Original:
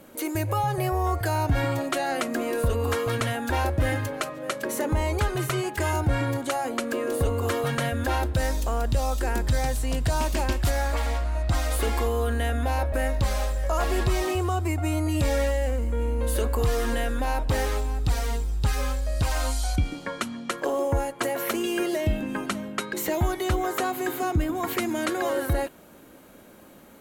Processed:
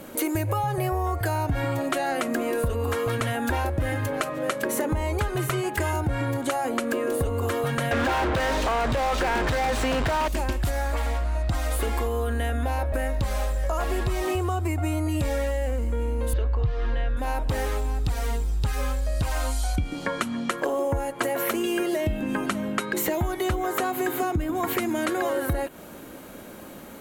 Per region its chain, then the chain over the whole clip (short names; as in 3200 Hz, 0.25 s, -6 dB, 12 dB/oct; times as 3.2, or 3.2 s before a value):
7.91–10.28 LPF 5800 Hz + overdrive pedal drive 37 dB, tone 2500 Hz, clips at -14.5 dBFS
16.33–17.17 LPF 4400 Hz 24 dB/oct + resonant low shelf 160 Hz +7.5 dB, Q 3
whole clip: dynamic EQ 5000 Hz, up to -4 dB, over -47 dBFS, Q 1.1; compressor, threshold -31 dBFS; gain +8 dB